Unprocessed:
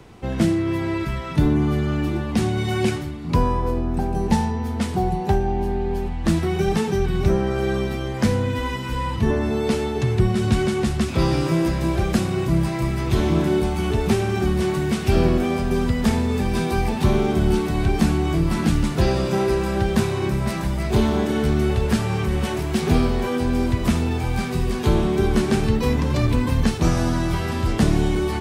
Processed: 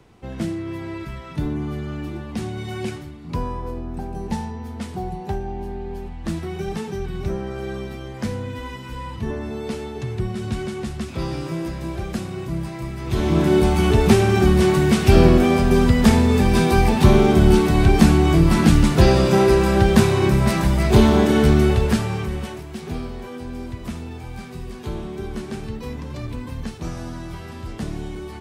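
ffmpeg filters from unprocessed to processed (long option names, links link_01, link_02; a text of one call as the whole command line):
ffmpeg -i in.wav -af "volume=5.5dB,afade=type=in:start_time=13:duration=0.7:silence=0.237137,afade=type=out:start_time=21.49:duration=0.61:silence=0.446684,afade=type=out:start_time=22.1:duration=0.55:silence=0.334965" out.wav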